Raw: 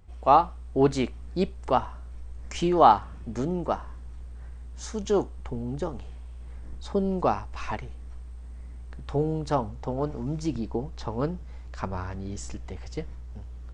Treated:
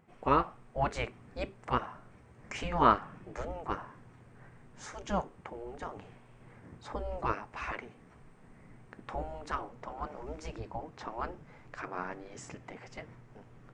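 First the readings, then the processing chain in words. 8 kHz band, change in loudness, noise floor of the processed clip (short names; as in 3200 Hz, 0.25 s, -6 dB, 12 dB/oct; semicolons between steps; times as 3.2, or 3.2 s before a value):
-8.5 dB, -8.5 dB, -58 dBFS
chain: spectral gate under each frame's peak -10 dB weak; resonant high shelf 2900 Hz -7.5 dB, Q 1.5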